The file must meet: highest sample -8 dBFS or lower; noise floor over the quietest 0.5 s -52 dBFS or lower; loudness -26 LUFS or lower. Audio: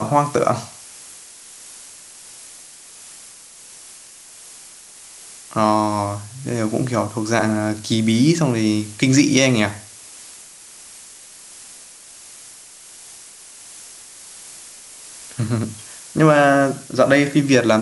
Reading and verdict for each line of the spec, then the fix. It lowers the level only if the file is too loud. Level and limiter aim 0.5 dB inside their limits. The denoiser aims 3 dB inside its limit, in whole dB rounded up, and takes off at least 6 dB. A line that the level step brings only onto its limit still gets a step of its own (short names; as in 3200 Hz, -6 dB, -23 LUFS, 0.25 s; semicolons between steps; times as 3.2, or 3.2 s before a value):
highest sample -1.5 dBFS: fail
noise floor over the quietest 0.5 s -42 dBFS: fail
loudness -18.0 LUFS: fail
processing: denoiser 6 dB, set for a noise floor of -42 dBFS; gain -8.5 dB